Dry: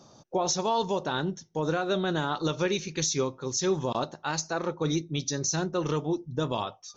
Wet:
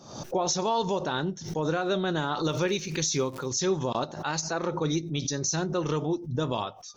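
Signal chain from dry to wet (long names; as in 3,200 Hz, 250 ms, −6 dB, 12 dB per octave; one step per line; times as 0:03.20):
0:02.43–0:03.47: surface crackle 260 per second −46 dBFS
background raised ahead of every attack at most 80 dB per second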